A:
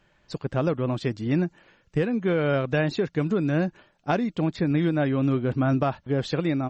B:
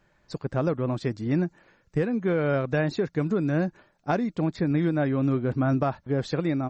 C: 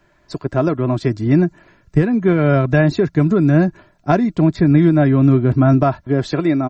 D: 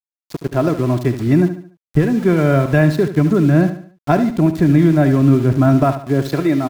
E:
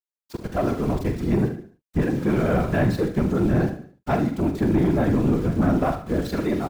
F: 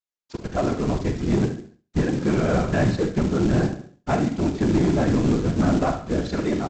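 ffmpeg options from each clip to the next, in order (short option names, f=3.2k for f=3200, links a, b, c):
-af "equalizer=f=3k:w=2.6:g=-8,volume=-1dB"
-filter_complex "[0:a]acrossover=split=190|2500[a][b][c];[a]dynaudnorm=f=250:g=9:m=8dB[d];[b]aecho=1:1:3:0.64[e];[d][e][c]amix=inputs=3:normalize=0,volume=7.5dB"
-af "aeval=exprs='val(0)*gte(abs(val(0)),0.0335)':c=same,aecho=1:1:72|144|216|288:0.282|0.11|0.0429|0.0167"
-filter_complex "[0:a]afftfilt=real='hypot(re,im)*cos(2*PI*random(0))':imag='hypot(re,im)*sin(2*PI*random(1))':win_size=512:overlap=0.75,asoftclip=type=tanh:threshold=-13.5dB,asplit=2[a][b];[b]adelay=43,volume=-10dB[c];[a][c]amix=inputs=2:normalize=0"
-af "aresample=16000,acrusher=bits=5:mode=log:mix=0:aa=0.000001,aresample=44100,aecho=1:1:69|138|207:0.0944|0.0434|0.02"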